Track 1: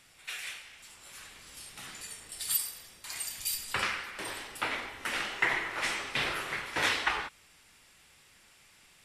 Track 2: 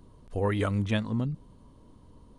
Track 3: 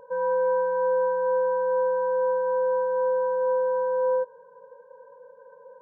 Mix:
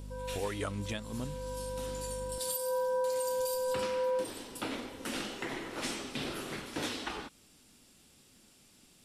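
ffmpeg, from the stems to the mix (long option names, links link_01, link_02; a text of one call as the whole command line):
ffmpeg -i stem1.wav -i stem2.wav -i stem3.wav -filter_complex "[0:a]equalizer=frequency=250:width_type=o:width=1:gain=11,equalizer=frequency=1000:width_type=o:width=1:gain=-5,equalizer=frequency=2000:width_type=o:width=1:gain=-11,volume=0.5dB[link_01];[1:a]bass=frequency=250:gain=-8,treble=frequency=4000:gain=9,aeval=exprs='val(0)+0.0112*(sin(2*PI*50*n/s)+sin(2*PI*2*50*n/s)/2+sin(2*PI*3*50*n/s)/3+sin(2*PI*4*50*n/s)/4+sin(2*PI*5*50*n/s)/5)':channel_layout=same,volume=-3.5dB,asplit=2[link_02][link_03];[2:a]volume=-4.5dB[link_04];[link_03]apad=whole_len=256579[link_05];[link_04][link_05]sidechaincompress=threshold=-53dB:ratio=8:attack=16:release=390[link_06];[link_01][link_02][link_06]amix=inputs=3:normalize=0,alimiter=level_in=0.5dB:limit=-24dB:level=0:latency=1:release=325,volume=-0.5dB" out.wav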